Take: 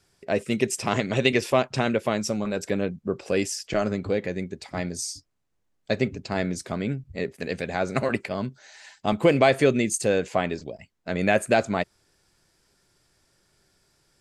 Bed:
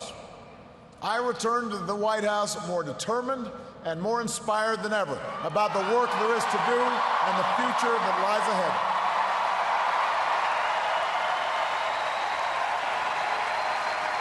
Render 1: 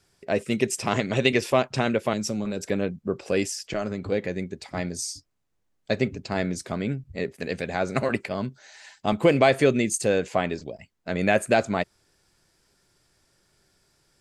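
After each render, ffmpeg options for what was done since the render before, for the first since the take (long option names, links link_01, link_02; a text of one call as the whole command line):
ffmpeg -i in.wav -filter_complex "[0:a]asettb=1/sr,asplit=3[link_01][link_02][link_03];[link_01]atrim=end=2.134[link_04];[link_02]atrim=start=2.13:end=2.7,asetpts=PTS-STARTPTS,afade=type=in:duration=0.004:curve=qsin,afade=type=out:start_time=0.566:duration=0.004:curve=qsin,acrossover=split=470|3000[link_05][link_06][link_07];[link_06]acompressor=threshold=-38dB:ratio=6:attack=3.2:release=140:knee=2.83:detection=peak[link_08];[link_05][link_08][link_07]amix=inputs=3:normalize=0[link_09];[link_03]atrim=start=2.696[link_10];[link_04][link_09]acrossfade=duration=0.004:curve1=hsin:curve2=qsin[link_11];[link_11][link_10]acrossfade=duration=0.004:curve1=qsin:curve2=hsin,asettb=1/sr,asplit=3[link_12][link_13][link_14];[link_12]atrim=end=3.504[link_15];[link_13]atrim=start=3.5:end=4.12,asetpts=PTS-STARTPTS,afade=type=in:duration=0.004:curve=qsin,afade=type=out:start_time=0.616:duration=0.004:curve=qsin,acompressor=threshold=-30dB:ratio=1.5:attack=3.2:release=140:knee=1:detection=peak[link_16];[link_14]atrim=start=4.116[link_17];[link_15][link_16]acrossfade=duration=0.004:curve1=hsin:curve2=qsin[link_18];[link_18][link_17]acrossfade=duration=0.004:curve1=qsin:curve2=hsin" out.wav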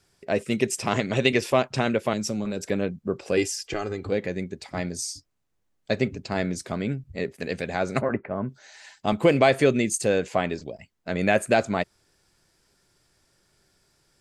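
ffmpeg -i in.wav -filter_complex "[0:a]asettb=1/sr,asplit=3[link_01][link_02][link_03];[link_01]atrim=end=3.374[link_04];[link_02]atrim=start=3.37:end=4.06,asetpts=PTS-STARTPTS,afade=type=in:duration=0.004:curve=qsin,afade=type=out:start_time=0.686:duration=0.004:curve=qsin,aecho=1:1:2.5:0.65,atrim=end_sample=30429[link_05];[link_03]atrim=start=4.056[link_06];[link_04][link_05]acrossfade=duration=0.004:curve1=hsin:curve2=qsin[link_07];[link_07][link_06]acrossfade=duration=0.004:curve1=qsin:curve2=hsin,asplit=3[link_08][link_09][link_10];[link_08]afade=type=out:start_time=8:duration=0.02[link_11];[link_09]lowpass=frequency=1700:width=0.5412,lowpass=frequency=1700:width=1.3066,afade=type=in:start_time=8:duration=0.02,afade=type=out:start_time=8.48:duration=0.02[link_12];[link_10]afade=type=in:start_time=8.48:duration=0.02[link_13];[link_11][link_12][link_13]amix=inputs=3:normalize=0" out.wav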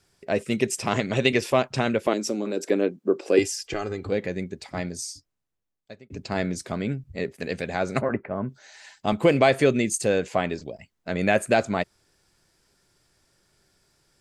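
ffmpeg -i in.wav -filter_complex "[0:a]asettb=1/sr,asplit=3[link_01][link_02][link_03];[link_01]atrim=end=2.074[link_04];[link_02]atrim=start=2.07:end=3.39,asetpts=PTS-STARTPTS,afade=type=in:duration=0.004:curve=qsin,afade=type=out:start_time=1.316:duration=0.004:curve=qsin,highpass=frequency=320:width_type=q:width=2.5[link_05];[link_03]atrim=start=3.386[link_06];[link_04][link_05]acrossfade=duration=0.004:curve1=hsin:curve2=qsin[link_07];[link_07][link_06]acrossfade=duration=0.004:curve1=qsin:curve2=hsin,asplit=2[link_08][link_09];[link_08]atrim=end=6.1,asetpts=PTS-STARTPTS,afade=type=out:start_time=4.7:duration=1.4[link_10];[link_09]atrim=start=6.1,asetpts=PTS-STARTPTS,afade=type=in:duration=0.004:curve=hsin[link_11];[link_10][link_11]concat=n=2:v=0:a=1" out.wav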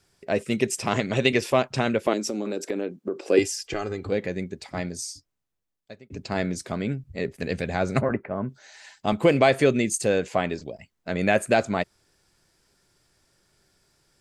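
ffmpeg -i in.wav -filter_complex "[0:a]asettb=1/sr,asplit=3[link_01][link_02][link_03];[link_01]atrim=end=2.274[link_04];[link_02]atrim=start=2.27:end=3.24,asetpts=PTS-STARTPTS,afade=type=in:duration=0.004:curve=qsin,afade=type=out:start_time=0.966:duration=0.004:curve=qsin,acompressor=threshold=-23dB:ratio=6:attack=3.2:release=140:knee=1:detection=peak[link_05];[link_03]atrim=start=3.236[link_06];[link_04][link_05]acrossfade=duration=0.004:curve1=hsin:curve2=qsin[link_07];[link_07][link_06]acrossfade=duration=0.004:curve1=qsin:curve2=hsin,asettb=1/sr,asplit=3[link_08][link_09][link_10];[link_08]atrim=end=7.244[link_11];[link_09]atrim=start=7.24:end=8.13,asetpts=PTS-STARTPTS,afade=type=in:duration=0.004:curve=qsin,afade=type=out:start_time=0.886:duration=0.004:curve=qsin,lowshelf=frequency=130:gain=10.5[link_12];[link_10]atrim=start=8.126[link_13];[link_11][link_12]acrossfade=duration=0.004:curve1=hsin:curve2=qsin[link_14];[link_14][link_13]acrossfade=duration=0.004:curve1=qsin:curve2=hsin" out.wav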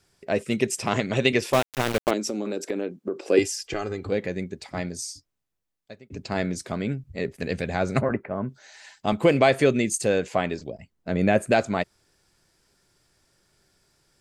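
ffmpeg -i in.wav -filter_complex "[0:a]asettb=1/sr,asplit=3[link_01][link_02][link_03];[link_01]atrim=end=1.534[link_04];[link_02]atrim=start=1.53:end=2.11,asetpts=PTS-STARTPTS,afade=type=in:duration=0.004:curve=qsin,afade=type=out:start_time=0.576:duration=0.004:curve=qsin,aeval=exprs='val(0)*gte(abs(val(0)),0.0794)':channel_layout=same[link_05];[link_03]atrim=start=2.106[link_06];[link_04][link_05]acrossfade=duration=0.004:curve1=hsin:curve2=qsin[link_07];[link_07][link_06]acrossfade=duration=0.004:curve1=qsin:curve2=hsin,asettb=1/sr,asplit=3[link_08][link_09][link_10];[link_08]atrim=end=10.684[link_11];[link_09]atrim=start=10.68:end=11.52,asetpts=PTS-STARTPTS,afade=type=in:duration=0.004:curve=qsin,afade=type=out:start_time=0.836:duration=0.004:curve=qsin,tiltshelf=frequency=670:gain=4.5[link_12];[link_10]atrim=start=11.516[link_13];[link_11][link_12]acrossfade=duration=0.004:curve1=hsin:curve2=qsin[link_14];[link_14][link_13]acrossfade=duration=0.004:curve1=qsin:curve2=hsin" out.wav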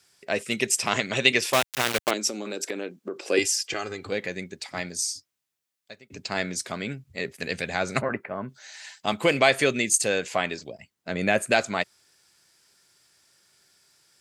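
ffmpeg -i in.wav -af "highpass=92,tiltshelf=frequency=970:gain=-6.5" out.wav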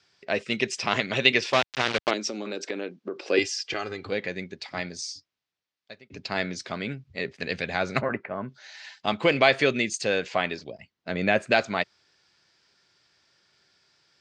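ffmpeg -i in.wav -af "lowpass=frequency=5200:width=0.5412,lowpass=frequency=5200:width=1.3066" out.wav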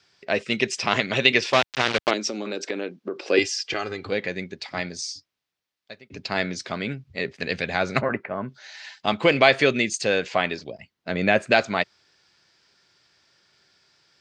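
ffmpeg -i in.wav -af "volume=3dB,alimiter=limit=-1dB:level=0:latency=1" out.wav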